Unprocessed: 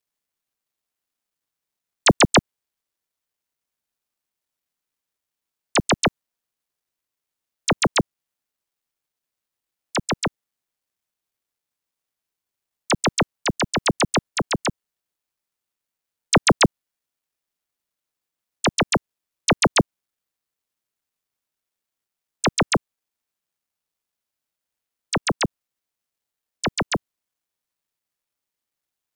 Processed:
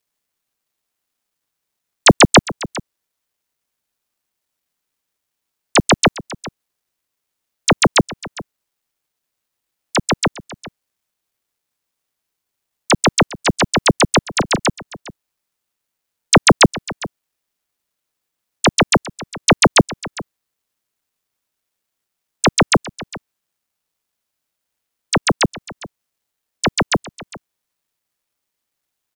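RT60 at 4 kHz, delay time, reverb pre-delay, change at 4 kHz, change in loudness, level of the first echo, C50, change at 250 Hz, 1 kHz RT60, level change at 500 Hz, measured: none, 0.406 s, none, +6.5 dB, +6.5 dB, -18.0 dB, none, +6.5 dB, none, +6.5 dB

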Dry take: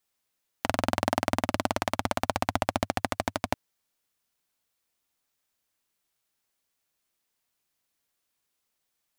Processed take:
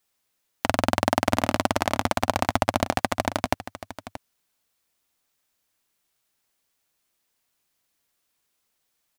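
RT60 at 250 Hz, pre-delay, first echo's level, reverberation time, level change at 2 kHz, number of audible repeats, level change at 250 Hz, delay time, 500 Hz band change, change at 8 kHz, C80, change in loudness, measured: none, none, -13.5 dB, none, +4.5 dB, 1, +4.5 dB, 0.628 s, +4.5 dB, +4.5 dB, none, +4.5 dB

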